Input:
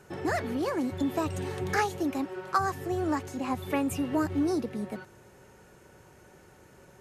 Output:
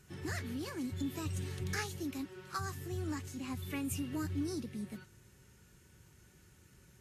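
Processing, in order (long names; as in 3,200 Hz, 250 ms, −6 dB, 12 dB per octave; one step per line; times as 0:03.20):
guitar amp tone stack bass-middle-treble 6-0-2
level +11.5 dB
Ogg Vorbis 32 kbit/s 44,100 Hz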